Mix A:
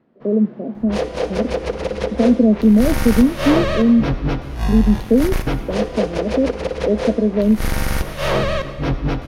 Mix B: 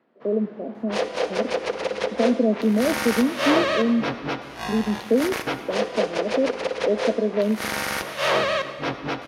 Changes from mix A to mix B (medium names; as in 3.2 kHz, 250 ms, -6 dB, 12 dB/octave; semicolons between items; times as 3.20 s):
speech: send +10.5 dB; master: add frequency weighting A